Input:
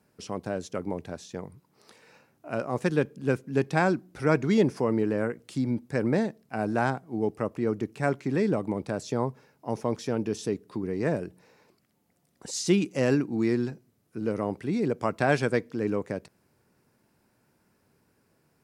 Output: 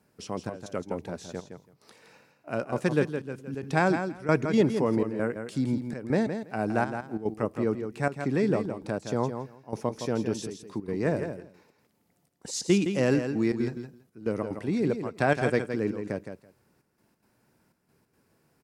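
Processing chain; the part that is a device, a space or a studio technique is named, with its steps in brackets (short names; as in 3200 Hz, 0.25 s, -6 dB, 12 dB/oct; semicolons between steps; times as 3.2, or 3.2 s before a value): trance gate with a delay (step gate "xxxxxx..xx." 182 bpm -12 dB; feedback echo 0.165 s, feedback 15%, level -8 dB)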